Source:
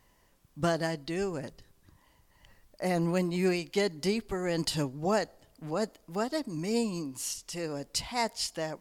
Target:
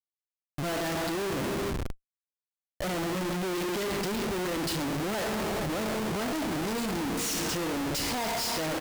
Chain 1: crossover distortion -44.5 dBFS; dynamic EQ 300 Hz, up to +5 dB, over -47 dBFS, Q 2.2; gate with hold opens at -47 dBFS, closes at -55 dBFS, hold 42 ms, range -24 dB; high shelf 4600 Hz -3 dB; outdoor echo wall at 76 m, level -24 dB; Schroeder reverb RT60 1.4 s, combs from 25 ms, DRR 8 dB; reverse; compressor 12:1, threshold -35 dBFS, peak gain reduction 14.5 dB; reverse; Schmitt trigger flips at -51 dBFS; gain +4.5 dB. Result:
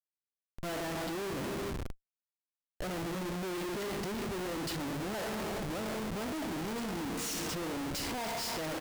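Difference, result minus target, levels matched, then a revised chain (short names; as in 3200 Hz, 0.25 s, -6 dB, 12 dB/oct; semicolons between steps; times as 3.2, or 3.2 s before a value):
compressor: peak gain reduction +7.5 dB
crossover distortion -44.5 dBFS; dynamic EQ 300 Hz, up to +5 dB, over -47 dBFS, Q 2.2; gate with hold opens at -47 dBFS, closes at -55 dBFS, hold 42 ms, range -24 dB; high shelf 4600 Hz -3 dB; outdoor echo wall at 76 m, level -24 dB; Schroeder reverb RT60 1.4 s, combs from 25 ms, DRR 8 dB; reverse; compressor 12:1, threshold -27 dBFS, peak gain reduction 7.5 dB; reverse; Schmitt trigger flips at -51 dBFS; gain +4.5 dB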